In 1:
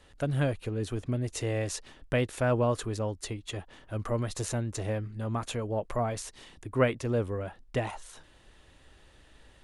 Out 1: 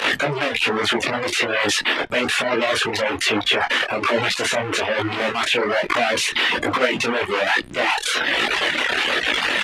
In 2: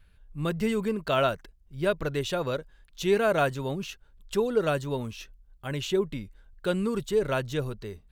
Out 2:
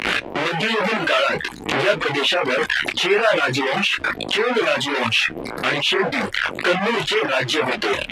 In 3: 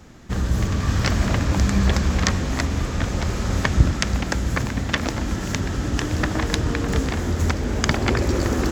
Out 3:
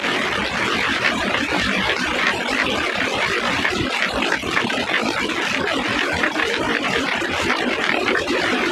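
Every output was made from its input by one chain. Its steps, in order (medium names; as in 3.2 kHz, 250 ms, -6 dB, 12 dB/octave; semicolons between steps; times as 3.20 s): one-bit delta coder 64 kbps, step -18.5 dBFS; reverb removal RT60 0.94 s; frequency weighting D; reverb removal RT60 0.96 s; three-band isolator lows -16 dB, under 240 Hz, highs -20 dB, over 2.6 kHz; in parallel at -0.5 dB: compressor with a negative ratio -35 dBFS, ratio -1; on the sum: feedback comb 120 Hz, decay 0.16 s, harmonics all, mix 30%; volume shaper 124 bpm, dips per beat 1, -11 dB, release 73 ms; loudness maximiser +9.5 dB; detune thickener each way 41 cents; trim +2 dB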